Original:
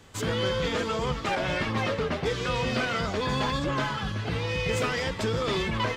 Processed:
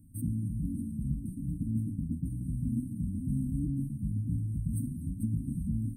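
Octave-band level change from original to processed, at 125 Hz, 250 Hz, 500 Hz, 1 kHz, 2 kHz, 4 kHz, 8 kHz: 0.0 dB, −1.0 dB, below −35 dB, below −40 dB, below −40 dB, below −40 dB, −11.5 dB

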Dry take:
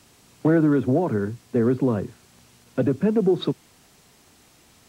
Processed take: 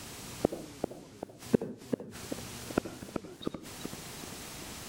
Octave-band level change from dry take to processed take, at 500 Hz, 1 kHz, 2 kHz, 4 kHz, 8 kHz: −13.5 dB, −9.5 dB, −9.0 dB, −3.0 dB, can't be measured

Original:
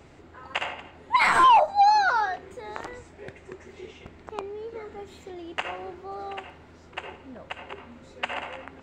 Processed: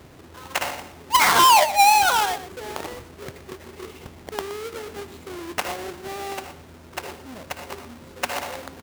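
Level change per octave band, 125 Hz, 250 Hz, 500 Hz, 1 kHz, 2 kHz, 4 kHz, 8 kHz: +6.0, +5.0, +3.5, +2.0, +3.0, +10.0, +19.5 decibels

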